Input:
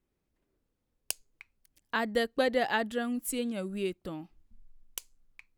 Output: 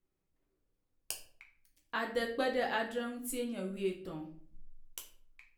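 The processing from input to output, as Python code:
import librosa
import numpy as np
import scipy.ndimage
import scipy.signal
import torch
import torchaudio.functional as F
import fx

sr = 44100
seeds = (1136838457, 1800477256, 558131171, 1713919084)

y = fx.room_shoebox(x, sr, seeds[0], volume_m3=52.0, walls='mixed', distance_m=0.6)
y = F.gain(torch.from_numpy(y), -7.0).numpy()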